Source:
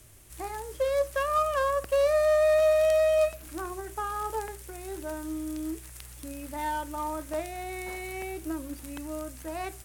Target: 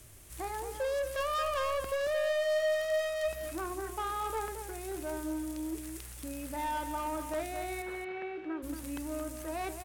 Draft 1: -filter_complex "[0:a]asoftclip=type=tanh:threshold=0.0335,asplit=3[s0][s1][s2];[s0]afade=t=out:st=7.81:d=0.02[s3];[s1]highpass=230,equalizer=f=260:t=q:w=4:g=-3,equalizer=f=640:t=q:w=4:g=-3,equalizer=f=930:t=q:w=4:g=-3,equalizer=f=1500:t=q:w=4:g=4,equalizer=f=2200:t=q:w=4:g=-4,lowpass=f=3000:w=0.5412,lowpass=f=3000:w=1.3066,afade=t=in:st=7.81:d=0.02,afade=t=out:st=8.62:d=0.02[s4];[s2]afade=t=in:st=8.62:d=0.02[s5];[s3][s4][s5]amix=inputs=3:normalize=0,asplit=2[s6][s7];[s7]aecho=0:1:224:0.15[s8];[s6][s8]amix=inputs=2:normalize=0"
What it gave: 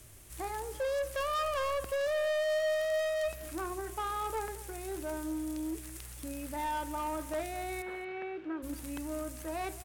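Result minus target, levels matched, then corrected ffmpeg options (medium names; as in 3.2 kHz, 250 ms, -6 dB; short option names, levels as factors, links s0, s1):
echo-to-direct -8 dB
-filter_complex "[0:a]asoftclip=type=tanh:threshold=0.0335,asplit=3[s0][s1][s2];[s0]afade=t=out:st=7.81:d=0.02[s3];[s1]highpass=230,equalizer=f=260:t=q:w=4:g=-3,equalizer=f=640:t=q:w=4:g=-3,equalizer=f=930:t=q:w=4:g=-3,equalizer=f=1500:t=q:w=4:g=4,equalizer=f=2200:t=q:w=4:g=-4,lowpass=f=3000:w=0.5412,lowpass=f=3000:w=1.3066,afade=t=in:st=7.81:d=0.02,afade=t=out:st=8.62:d=0.02[s4];[s2]afade=t=in:st=8.62:d=0.02[s5];[s3][s4][s5]amix=inputs=3:normalize=0,asplit=2[s6][s7];[s7]aecho=0:1:224:0.376[s8];[s6][s8]amix=inputs=2:normalize=0"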